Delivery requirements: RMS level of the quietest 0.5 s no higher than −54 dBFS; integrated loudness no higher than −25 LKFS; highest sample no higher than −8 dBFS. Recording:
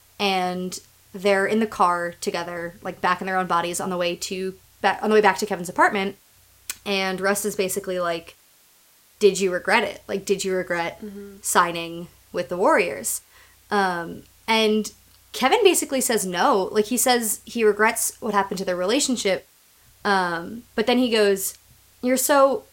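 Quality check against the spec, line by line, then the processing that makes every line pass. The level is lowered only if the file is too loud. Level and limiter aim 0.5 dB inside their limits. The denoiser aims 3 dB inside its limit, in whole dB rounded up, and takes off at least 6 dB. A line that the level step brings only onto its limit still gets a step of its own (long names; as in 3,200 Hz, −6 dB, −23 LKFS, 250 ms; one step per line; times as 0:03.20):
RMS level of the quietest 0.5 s −56 dBFS: in spec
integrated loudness −22.0 LKFS: out of spec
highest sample −2.0 dBFS: out of spec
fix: level −3.5 dB
brickwall limiter −8.5 dBFS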